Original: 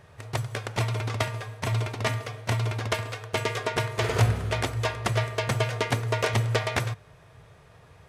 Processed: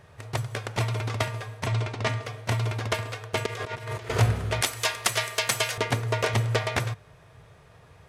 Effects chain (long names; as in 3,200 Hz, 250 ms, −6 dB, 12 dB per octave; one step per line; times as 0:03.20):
0:01.66–0:02.26: low-pass filter 7,000 Hz 12 dB per octave
0:03.46–0:04.10: compressor whose output falls as the input rises −36 dBFS, ratio −1
0:04.61–0:05.78: spectral tilt +4 dB per octave